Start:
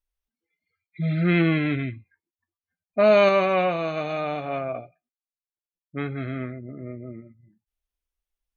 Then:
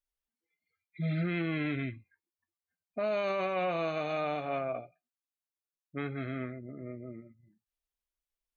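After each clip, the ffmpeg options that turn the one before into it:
ffmpeg -i in.wav -af "lowshelf=frequency=140:gain=-6,alimiter=limit=-19.5dB:level=0:latency=1:release=52,volume=-4.5dB" out.wav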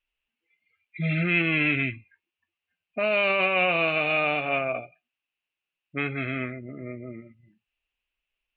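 ffmpeg -i in.wav -af "lowpass=frequency=2700:width_type=q:width=7.3,volume=5dB" out.wav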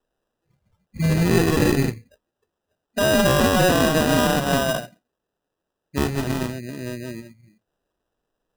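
ffmpeg -i in.wav -af "acrusher=samples=20:mix=1:aa=0.000001,volume=6dB" out.wav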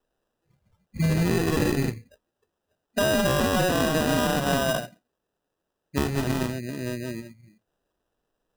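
ffmpeg -i in.wav -af "acompressor=threshold=-19dB:ratio=6" out.wav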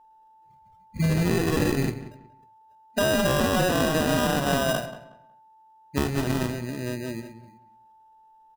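ffmpeg -i in.wav -filter_complex "[0:a]asplit=2[link_01][link_02];[link_02]adelay=183,lowpass=frequency=2700:poles=1,volume=-13.5dB,asplit=2[link_03][link_04];[link_04]adelay=183,lowpass=frequency=2700:poles=1,volume=0.26,asplit=2[link_05][link_06];[link_06]adelay=183,lowpass=frequency=2700:poles=1,volume=0.26[link_07];[link_01][link_03][link_05][link_07]amix=inputs=4:normalize=0,aeval=exprs='val(0)+0.00224*sin(2*PI*880*n/s)':channel_layout=same" out.wav

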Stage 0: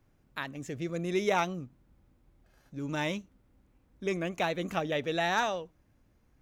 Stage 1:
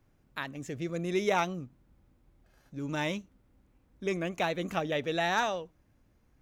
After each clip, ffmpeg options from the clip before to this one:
ffmpeg -i in.wav -af anull out.wav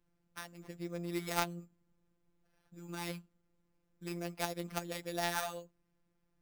ffmpeg -i in.wav -af "acrusher=samples=6:mix=1:aa=0.000001,afftfilt=real='hypot(re,im)*cos(PI*b)':imag='0':win_size=1024:overlap=0.75,aeval=exprs='0.316*(cos(1*acos(clip(val(0)/0.316,-1,1)))-cos(1*PI/2))+0.0631*(cos(3*acos(clip(val(0)/0.316,-1,1)))-cos(3*PI/2))':channel_layout=same,volume=1.5dB" out.wav

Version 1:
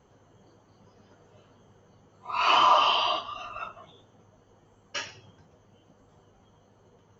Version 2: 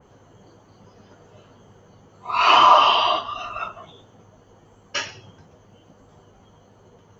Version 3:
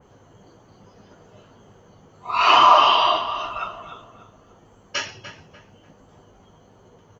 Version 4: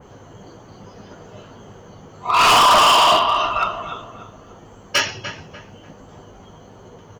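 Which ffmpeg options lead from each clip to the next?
ffmpeg -i in.wav -af "adynamicequalizer=threshold=0.0126:dfrequency=2700:dqfactor=0.7:tfrequency=2700:tqfactor=0.7:attack=5:release=100:ratio=0.375:range=2.5:mode=cutabove:tftype=highshelf,volume=7.5dB" out.wav
ffmpeg -i in.wav -filter_complex "[0:a]asplit=2[link_01][link_02];[link_02]adelay=295,lowpass=frequency=2600:poles=1,volume=-10.5dB,asplit=2[link_03][link_04];[link_04]adelay=295,lowpass=frequency=2600:poles=1,volume=0.36,asplit=2[link_05][link_06];[link_06]adelay=295,lowpass=frequency=2600:poles=1,volume=0.36,asplit=2[link_07][link_08];[link_08]adelay=295,lowpass=frequency=2600:poles=1,volume=0.36[link_09];[link_01][link_03][link_05][link_07][link_09]amix=inputs=5:normalize=0" out.wav
ffmpeg -i in.wav -af "asoftclip=type=hard:threshold=-19.5dB,volume=9dB" out.wav

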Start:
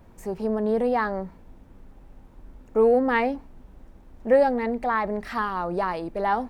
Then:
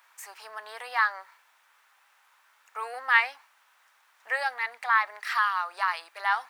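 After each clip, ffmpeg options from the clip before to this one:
ffmpeg -i in.wav -af "highpass=frequency=1200:width=0.5412,highpass=frequency=1200:width=1.3066,volume=6.5dB" out.wav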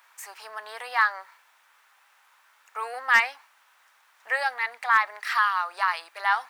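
ffmpeg -i in.wav -af "asoftclip=type=hard:threshold=-12dB,volume=2.5dB" out.wav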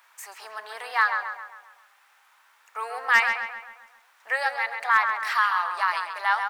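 ffmpeg -i in.wav -filter_complex "[0:a]asplit=2[link_01][link_02];[link_02]adelay=134,lowpass=frequency=3400:poles=1,volume=-6dB,asplit=2[link_03][link_04];[link_04]adelay=134,lowpass=frequency=3400:poles=1,volume=0.51,asplit=2[link_05][link_06];[link_06]adelay=134,lowpass=frequency=3400:poles=1,volume=0.51,asplit=2[link_07][link_08];[link_08]adelay=134,lowpass=frequency=3400:poles=1,volume=0.51,asplit=2[link_09][link_10];[link_10]adelay=134,lowpass=frequency=3400:poles=1,volume=0.51,asplit=2[link_11][link_12];[link_12]adelay=134,lowpass=frequency=3400:poles=1,volume=0.51[link_13];[link_01][link_03][link_05][link_07][link_09][link_11][link_13]amix=inputs=7:normalize=0" out.wav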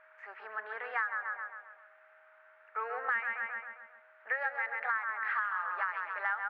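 ffmpeg -i in.wav -af "highpass=frequency=110:width=0.5412,highpass=frequency=110:width=1.3066,equalizer=frequency=290:width_type=q:width=4:gain=-5,equalizer=frequency=690:width_type=q:width=4:gain=-7,equalizer=frequency=1000:width_type=q:width=4:gain=-9,equalizer=frequency=1500:width_type=q:width=4:gain=4,lowpass=frequency=2000:width=0.5412,lowpass=frequency=2000:width=1.3066,acompressor=threshold=-30dB:ratio=6,aeval=exprs='val(0)+0.000708*sin(2*PI*630*n/s)':channel_layout=same" out.wav

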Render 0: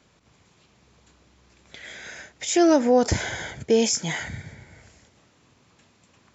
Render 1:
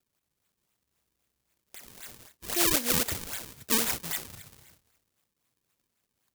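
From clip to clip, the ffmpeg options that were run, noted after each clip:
ffmpeg -i in.wav -af "acrusher=samples=37:mix=1:aa=0.000001:lfo=1:lforange=59.2:lforate=3.8,crystalizer=i=8.5:c=0,agate=range=-11dB:threshold=-41dB:ratio=16:detection=peak,volume=-15.5dB" out.wav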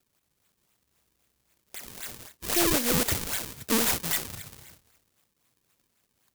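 ffmpeg -i in.wav -af "aeval=exprs='(tanh(7.08*val(0)+0.45)-tanh(0.45))/7.08':channel_layout=same,volume=8dB" out.wav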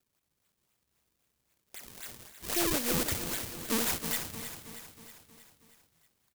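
ffmpeg -i in.wav -af "aecho=1:1:317|634|951|1268|1585|1902:0.299|0.167|0.0936|0.0524|0.0294|0.0164,volume=-5.5dB" out.wav

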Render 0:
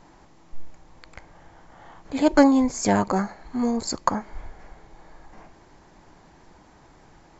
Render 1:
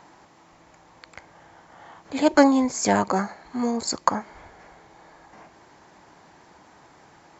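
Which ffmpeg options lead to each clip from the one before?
ffmpeg -i in.wav -filter_complex "[0:a]highpass=83,lowshelf=frequency=370:gain=-6,acrossover=split=580|2500[link_01][link_02][link_03];[link_02]acompressor=mode=upward:threshold=-53dB:ratio=2.5[link_04];[link_01][link_04][link_03]amix=inputs=3:normalize=0,volume=2.5dB" out.wav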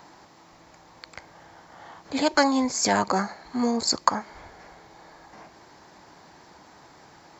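ffmpeg -i in.wav -filter_complex "[0:a]acrossover=split=780[link_01][link_02];[link_01]alimiter=limit=-18.5dB:level=0:latency=1:release=333[link_03];[link_02]aexciter=amount=1.9:drive=3.1:freq=4000[link_04];[link_03][link_04]amix=inputs=2:normalize=0,volume=1dB" out.wav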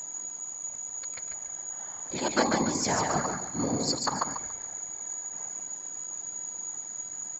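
ffmpeg -i in.wav -af "aecho=1:1:143|286|429|572:0.668|0.201|0.0602|0.018,aeval=exprs='val(0)+0.0355*sin(2*PI*6800*n/s)':channel_layout=same,afftfilt=real='hypot(re,im)*cos(2*PI*random(0))':imag='hypot(re,im)*sin(2*PI*random(1))':win_size=512:overlap=0.75" out.wav

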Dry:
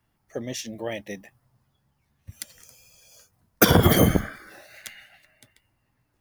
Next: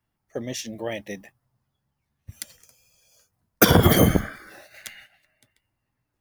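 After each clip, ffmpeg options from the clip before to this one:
ffmpeg -i in.wav -af "agate=range=-8dB:threshold=-49dB:ratio=16:detection=peak,volume=1dB" out.wav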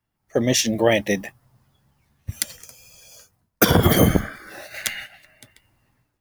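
ffmpeg -i in.wav -af "dynaudnorm=framelen=130:gausssize=5:maxgain=15dB,volume=-1dB" out.wav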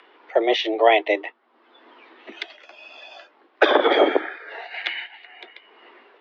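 ffmpeg -i in.wav -af "highpass=frequency=250:width_type=q:width=0.5412,highpass=frequency=250:width_type=q:width=1.307,lowpass=frequency=3500:width_type=q:width=0.5176,lowpass=frequency=3500:width_type=q:width=0.7071,lowpass=frequency=3500:width_type=q:width=1.932,afreqshift=110,acompressor=mode=upward:threshold=-34dB:ratio=2.5,volume=2.5dB" out.wav

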